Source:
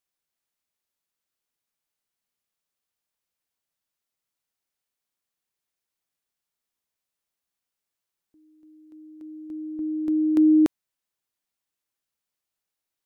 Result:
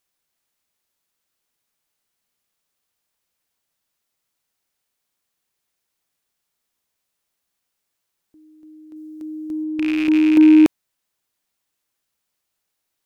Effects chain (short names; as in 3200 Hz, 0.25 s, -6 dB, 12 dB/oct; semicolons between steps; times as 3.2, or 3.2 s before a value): rattling part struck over -38 dBFS, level -24 dBFS; 8.96–9.64 tone controls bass +2 dB, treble +7 dB; in parallel at -10 dB: soft clip -24.5 dBFS, distortion -7 dB; on the sum: gain +6 dB